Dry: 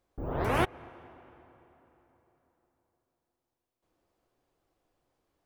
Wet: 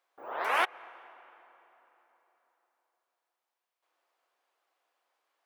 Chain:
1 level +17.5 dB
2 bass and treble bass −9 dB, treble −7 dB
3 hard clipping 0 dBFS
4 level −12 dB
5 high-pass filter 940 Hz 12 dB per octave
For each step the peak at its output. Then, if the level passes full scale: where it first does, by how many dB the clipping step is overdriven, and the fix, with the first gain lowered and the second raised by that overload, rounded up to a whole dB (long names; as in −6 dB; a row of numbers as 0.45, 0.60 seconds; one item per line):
+5.0, +3.5, 0.0, −12.0, −14.5 dBFS
step 1, 3.5 dB
step 1 +13.5 dB, step 4 −8 dB